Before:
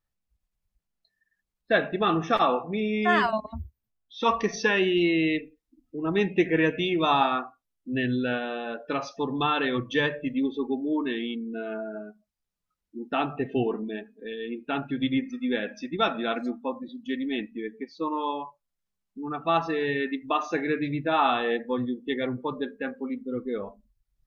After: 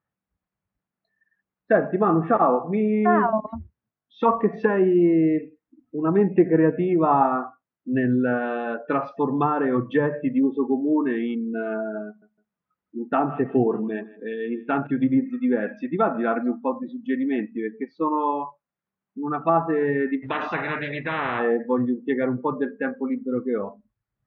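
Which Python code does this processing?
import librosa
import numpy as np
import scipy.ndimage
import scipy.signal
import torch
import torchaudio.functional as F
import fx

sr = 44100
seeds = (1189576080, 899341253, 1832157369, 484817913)

y = fx.echo_feedback(x, sr, ms=158, feedback_pct=26, wet_db=-19.0, at=(12.06, 14.87))
y = fx.spectral_comp(y, sr, ratio=10.0, at=(20.22, 21.38), fade=0.02)
y = fx.env_lowpass_down(y, sr, base_hz=1000.0, full_db=-21.5)
y = scipy.signal.sosfilt(scipy.signal.cheby1(2, 1.0, [140.0, 1600.0], 'bandpass', fs=sr, output='sos'), y)
y = F.gain(torch.from_numpy(y), 6.5).numpy()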